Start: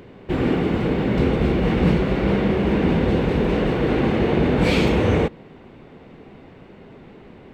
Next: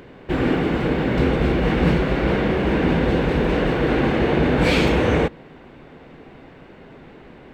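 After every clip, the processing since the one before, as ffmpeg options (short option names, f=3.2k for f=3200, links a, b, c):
-af "equalizer=f=100:t=o:w=0.33:g=-9,equalizer=f=200:t=o:w=0.33:g=-6,equalizer=f=400:t=o:w=0.33:g=-3,equalizer=f=1.6k:t=o:w=0.33:g=4,volume=2dB"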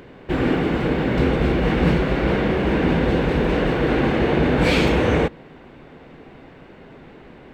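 -af anull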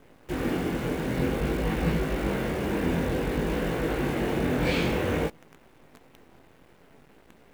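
-af "flanger=delay=18:depth=6:speed=0.54,acrusher=bits=7:dc=4:mix=0:aa=0.000001,volume=-5.5dB"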